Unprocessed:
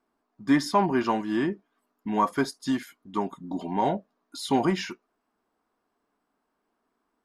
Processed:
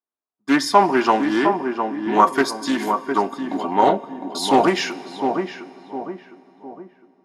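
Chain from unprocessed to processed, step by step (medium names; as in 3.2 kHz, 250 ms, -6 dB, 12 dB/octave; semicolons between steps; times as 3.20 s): high-pass 340 Hz 12 dB/octave; gate -48 dBFS, range -25 dB; level rider gain up to 6 dB; filtered feedback delay 708 ms, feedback 44%, low-pass 1.2 kHz, level -5 dB; on a send at -16.5 dB: reverberation RT60 3.8 s, pre-delay 3 ms; on the sum: loudspeaker Doppler distortion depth 0.15 ms; trim +4 dB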